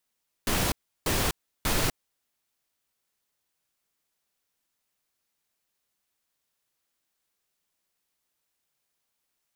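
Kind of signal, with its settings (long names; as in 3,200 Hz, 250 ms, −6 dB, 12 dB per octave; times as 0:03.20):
noise bursts pink, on 0.25 s, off 0.34 s, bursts 3, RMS −25.5 dBFS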